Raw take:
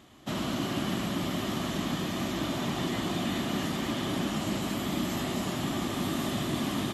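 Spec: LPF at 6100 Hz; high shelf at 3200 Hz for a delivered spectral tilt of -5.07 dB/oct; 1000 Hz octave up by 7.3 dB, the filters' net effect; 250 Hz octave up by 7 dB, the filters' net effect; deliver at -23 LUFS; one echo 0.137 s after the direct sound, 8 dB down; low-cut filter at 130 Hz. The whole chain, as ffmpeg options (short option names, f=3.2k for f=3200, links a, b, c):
-af "highpass=130,lowpass=6.1k,equalizer=f=250:t=o:g=8.5,equalizer=f=1k:t=o:g=8,highshelf=f=3.2k:g=7,aecho=1:1:137:0.398,volume=1.5dB"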